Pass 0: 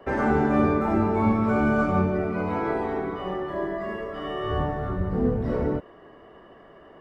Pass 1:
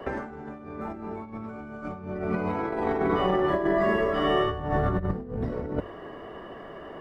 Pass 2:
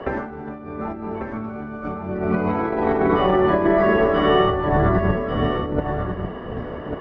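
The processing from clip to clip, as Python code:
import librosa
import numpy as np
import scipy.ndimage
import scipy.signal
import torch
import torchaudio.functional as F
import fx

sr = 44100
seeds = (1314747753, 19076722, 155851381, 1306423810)

y1 = fx.hum_notches(x, sr, base_hz=50, count=2)
y1 = fx.over_compress(y1, sr, threshold_db=-30.0, ratio=-0.5)
y1 = y1 * 10.0 ** (2.5 / 20.0)
y2 = fx.air_absorb(y1, sr, metres=140.0)
y2 = y2 + 10.0 ** (-7.0 / 20.0) * np.pad(y2, (int(1144 * sr / 1000.0), 0))[:len(y2)]
y2 = y2 * 10.0 ** (7.0 / 20.0)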